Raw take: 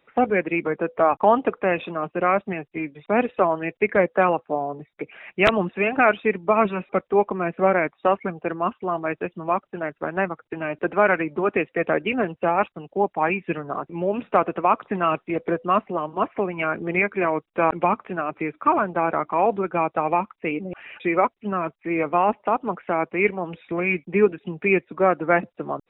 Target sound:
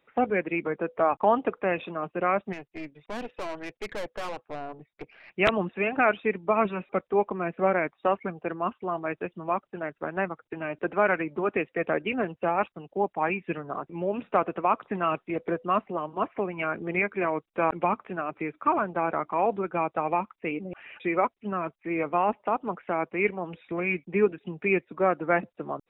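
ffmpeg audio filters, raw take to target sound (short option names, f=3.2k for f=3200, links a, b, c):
-filter_complex "[0:a]asplit=3[a][b][c];[a]afade=t=out:st=2.52:d=0.02[d];[b]aeval=exprs='(tanh(20*val(0)+0.75)-tanh(0.75))/20':c=same,afade=t=in:st=2.52:d=0.02,afade=t=out:st=5.29:d=0.02[e];[c]afade=t=in:st=5.29:d=0.02[f];[d][e][f]amix=inputs=3:normalize=0,volume=-5dB"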